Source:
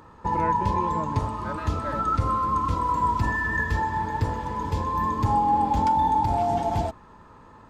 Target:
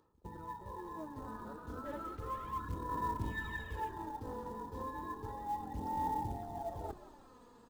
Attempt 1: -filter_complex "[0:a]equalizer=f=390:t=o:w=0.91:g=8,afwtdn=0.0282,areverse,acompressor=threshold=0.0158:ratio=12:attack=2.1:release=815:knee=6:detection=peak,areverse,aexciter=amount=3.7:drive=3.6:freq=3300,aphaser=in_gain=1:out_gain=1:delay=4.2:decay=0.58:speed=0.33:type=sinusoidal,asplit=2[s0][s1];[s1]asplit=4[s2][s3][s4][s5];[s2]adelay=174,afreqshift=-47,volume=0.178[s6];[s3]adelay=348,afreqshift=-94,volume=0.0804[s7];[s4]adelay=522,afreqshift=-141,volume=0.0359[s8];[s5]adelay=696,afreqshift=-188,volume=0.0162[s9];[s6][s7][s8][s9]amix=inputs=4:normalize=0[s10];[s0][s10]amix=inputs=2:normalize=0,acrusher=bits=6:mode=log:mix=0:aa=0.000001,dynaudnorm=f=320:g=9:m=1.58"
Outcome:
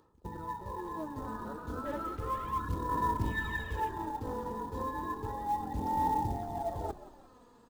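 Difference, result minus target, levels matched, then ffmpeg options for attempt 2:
compression: peak gain reduction -6 dB
-filter_complex "[0:a]equalizer=f=390:t=o:w=0.91:g=8,afwtdn=0.0282,areverse,acompressor=threshold=0.0075:ratio=12:attack=2.1:release=815:knee=6:detection=peak,areverse,aexciter=amount=3.7:drive=3.6:freq=3300,aphaser=in_gain=1:out_gain=1:delay=4.2:decay=0.58:speed=0.33:type=sinusoidal,asplit=2[s0][s1];[s1]asplit=4[s2][s3][s4][s5];[s2]adelay=174,afreqshift=-47,volume=0.178[s6];[s3]adelay=348,afreqshift=-94,volume=0.0804[s7];[s4]adelay=522,afreqshift=-141,volume=0.0359[s8];[s5]adelay=696,afreqshift=-188,volume=0.0162[s9];[s6][s7][s8][s9]amix=inputs=4:normalize=0[s10];[s0][s10]amix=inputs=2:normalize=0,acrusher=bits=6:mode=log:mix=0:aa=0.000001,dynaudnorm=f=320:g=9:m=1.58"

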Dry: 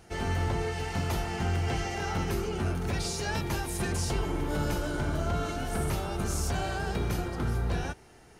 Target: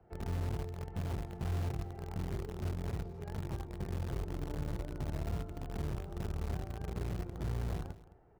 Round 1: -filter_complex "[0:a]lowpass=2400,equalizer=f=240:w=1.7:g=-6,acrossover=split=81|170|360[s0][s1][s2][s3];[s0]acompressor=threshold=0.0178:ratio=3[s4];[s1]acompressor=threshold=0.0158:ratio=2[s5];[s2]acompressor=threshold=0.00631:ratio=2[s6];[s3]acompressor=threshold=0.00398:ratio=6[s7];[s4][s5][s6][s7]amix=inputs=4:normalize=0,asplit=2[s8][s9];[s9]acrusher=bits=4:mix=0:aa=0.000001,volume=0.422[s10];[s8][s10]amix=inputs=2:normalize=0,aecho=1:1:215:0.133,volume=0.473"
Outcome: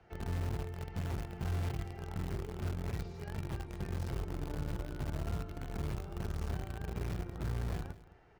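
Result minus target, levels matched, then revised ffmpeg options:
2 kHz band +3.0 dB
-filter_complex "[0:a]lowpass=870,equalizer=f=240:w=1.7:g=-6,acrossover=split=81|170|360[s0][s1][s2][s3];[s0]acompressor=threshold=0.0178:ratio=3[s4];[s1]acompressor=threshold=0.0158:ratio=2[s5];[s2]acompressor=threshold=0.00631:ratio=2[s6];[s3]acompressor=threshold=0.00398:ratio=6[s7];[s4][s5][s6][s7]amix=inputs=4:normalize=0,asplit=2[s8][s9];[s9]acrusher=bits=4:mix=0:aa=0.000001,volume=0.422[s10];[s8][s10]amix=inputs=2:normalize=0,aecho=1:1:215:0.133,volume=0.473"

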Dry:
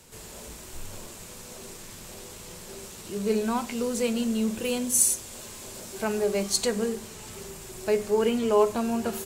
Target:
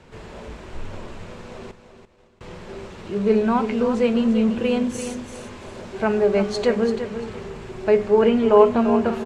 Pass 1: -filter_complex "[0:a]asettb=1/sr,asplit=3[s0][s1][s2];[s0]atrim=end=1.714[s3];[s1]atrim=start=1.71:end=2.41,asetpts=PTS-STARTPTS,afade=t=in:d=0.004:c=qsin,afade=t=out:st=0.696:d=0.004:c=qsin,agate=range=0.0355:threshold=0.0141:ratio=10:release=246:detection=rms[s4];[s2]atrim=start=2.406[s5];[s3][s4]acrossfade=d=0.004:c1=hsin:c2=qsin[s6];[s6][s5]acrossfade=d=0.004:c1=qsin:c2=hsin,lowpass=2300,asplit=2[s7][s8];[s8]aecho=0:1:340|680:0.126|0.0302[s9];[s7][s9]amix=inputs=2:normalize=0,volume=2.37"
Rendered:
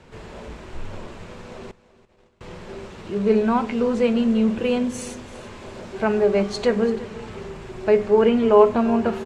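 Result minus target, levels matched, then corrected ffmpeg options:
echo-to-direct -8 dB
-filter_complex "[0:a]asettb=1/sr,asplit=3[s0][s1][s2];[s0]atrim=end=1.714[s3];[s1]atrim=start=1.71:end=2.41,asetpts=PTS-STARTPTS,afade=t=in:d=0.004:c=qsin,afade=t=out:st=0.696:d=0.004:c=qsin,agate=range=0.0355:threshold=0.0141:ratio=10:release=246:detection=rms[s4];[s2]atrim=start=2.406[s5];[s3][s4]acrossfade=d=0.004:c1=hsin:c2=qsin[s6];[s6][s5]acrossfade=d=0.004:c1=qsin:c2=hsin,lowpass=2300,asplit=2[s7][s8];[s8]aecho=0:1:340|680|1020:0.316|0.0759|0.0182[s9];[s7][s9]amix=inputs=2:normalize=0,volume=2.37"

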